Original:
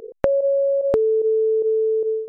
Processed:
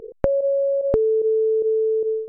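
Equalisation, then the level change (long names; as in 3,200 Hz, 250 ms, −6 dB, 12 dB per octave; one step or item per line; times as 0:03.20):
spectral tilt −2.5 dB per octave
−3.5 dB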